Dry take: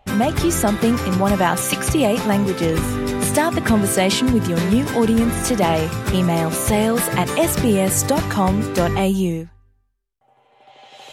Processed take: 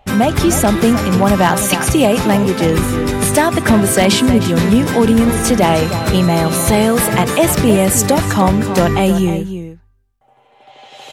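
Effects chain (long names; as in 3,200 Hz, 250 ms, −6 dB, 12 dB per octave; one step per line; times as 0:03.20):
slap from a distant wall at 53 metres, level −10 dB
wave folding −6.5 dBFS
0:05.74–0:06.85: steady tone 4,100 Hz −37 dBFS
level +5 dB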